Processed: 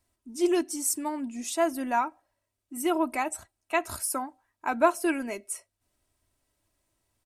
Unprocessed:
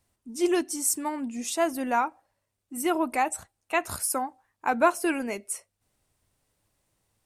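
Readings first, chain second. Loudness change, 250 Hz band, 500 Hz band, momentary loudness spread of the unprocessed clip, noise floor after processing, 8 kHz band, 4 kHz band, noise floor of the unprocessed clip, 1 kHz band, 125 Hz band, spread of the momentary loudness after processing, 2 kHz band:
-1.0 dB, -0.5 dB, -0.5 dB, 12 LU, -83 dBFS, -2.0 dB, -2.0 dB, -81 dBFS, -2.0 dB, -3.5 dB, 12 LU, -2.0 dB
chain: comb 3.1 ms, depth 46%; gain -3 dB

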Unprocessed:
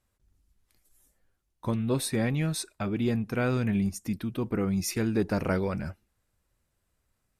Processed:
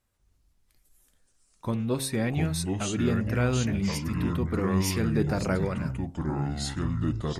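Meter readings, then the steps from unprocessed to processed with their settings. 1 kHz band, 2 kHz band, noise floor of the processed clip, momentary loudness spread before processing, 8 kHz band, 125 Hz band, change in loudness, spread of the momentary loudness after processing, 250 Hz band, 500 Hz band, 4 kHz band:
+3.0 dB, +1.5 dB, -68 dBFS, 6 LU, +2.0 dB, +4.0 dB, +1.0 dB, 5 LU, +1.5 dB, +0.5 dB, +4.0 dB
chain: echoes that change speed 0.139 s, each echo -5 st, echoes 2; de-hum 66.98 Hz, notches 17

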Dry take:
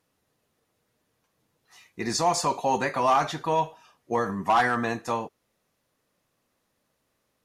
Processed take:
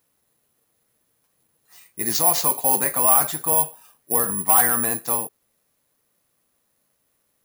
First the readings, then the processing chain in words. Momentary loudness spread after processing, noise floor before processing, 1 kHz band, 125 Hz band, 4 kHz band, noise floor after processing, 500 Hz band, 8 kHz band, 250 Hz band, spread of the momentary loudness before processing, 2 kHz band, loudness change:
9 LU, -76 dBFS, -1.0 dB, -1.0 dB, +2.0 dB, -71 dBFS, -1.0 dB, +16.0 dB, -1.0 dB, 9 LU, -1.0 dB, +7.5 dB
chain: careless resampling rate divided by 4×, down none, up zero stuff; gain -1 dB

